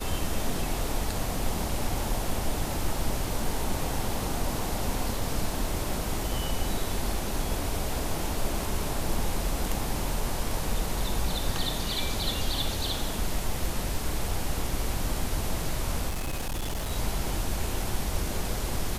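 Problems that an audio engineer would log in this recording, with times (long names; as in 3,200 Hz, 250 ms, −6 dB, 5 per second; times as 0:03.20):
0:16.08–0:16.92: clipping −27 dBFS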